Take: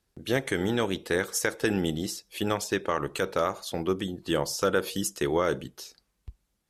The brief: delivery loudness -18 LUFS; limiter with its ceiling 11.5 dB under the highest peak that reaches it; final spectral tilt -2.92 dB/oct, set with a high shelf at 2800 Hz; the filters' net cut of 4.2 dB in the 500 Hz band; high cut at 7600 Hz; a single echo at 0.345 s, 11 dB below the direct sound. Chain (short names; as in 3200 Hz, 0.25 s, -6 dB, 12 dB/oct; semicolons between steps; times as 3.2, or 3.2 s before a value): LPF 7600 Hz; bell 500 Hz -5.5 dB; high shelf 2800 Hz +9 dB; limiter -20.5 dBFS; echo 0.345 s -11 dB; gain +14.5 dB